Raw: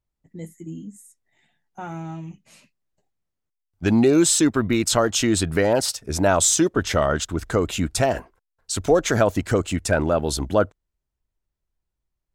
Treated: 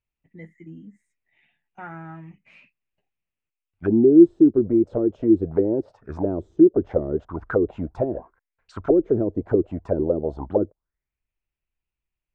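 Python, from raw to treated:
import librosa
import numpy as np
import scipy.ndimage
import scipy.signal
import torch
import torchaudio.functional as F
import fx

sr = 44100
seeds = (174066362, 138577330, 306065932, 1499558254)

y = fx.envelope_lowpass(x, sr, base_hz=350.0, top_hz=2600.0, q=5.2, full_db=-15.5, direction='down')
y = y * 10.0 ** (-6.5 / 20.0)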